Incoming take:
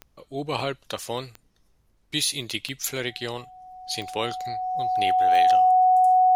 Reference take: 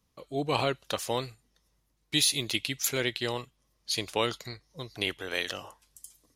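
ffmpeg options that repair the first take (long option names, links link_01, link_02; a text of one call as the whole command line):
ffmpeg -i in.wav -af "adeclick=threshold=4,bandreject=frequency=740:width=30,agate=range=-21dB:threshold=-55dB,asetnsamples=nb_out_samples=441:pad=0,asendcmd='5.56 volume volume 4dB',volume=0dB" out.wav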